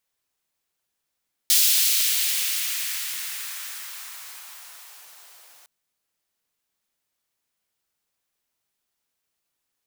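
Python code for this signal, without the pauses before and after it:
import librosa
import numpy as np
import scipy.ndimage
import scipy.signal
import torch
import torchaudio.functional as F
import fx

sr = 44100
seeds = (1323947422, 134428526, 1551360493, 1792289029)

y = fx.riser_noise(sr, seeds[0], length_s=4.16, colour='white', kind='highpass', start_hz=3700.0, end_hz=610.0, q=1.2, swell_db=-35.0, law='exponential')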